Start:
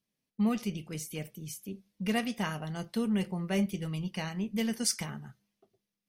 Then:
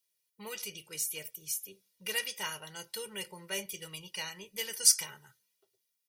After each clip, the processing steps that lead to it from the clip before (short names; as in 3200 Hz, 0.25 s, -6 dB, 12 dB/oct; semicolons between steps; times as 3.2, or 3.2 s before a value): tilt +4 dB/oct; comb 2.1 ms, depth 89%; gain -6.5 dB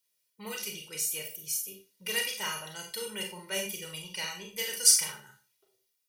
Schroeder reverb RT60 0.33 s, combs from 30 ms, DRR 2 dB; gain +1.5 dB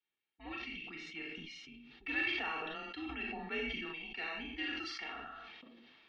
mistuned SSB -150 Hz 260–3500 Hz; sustainer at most 22 dB/s; gain -4.5 dB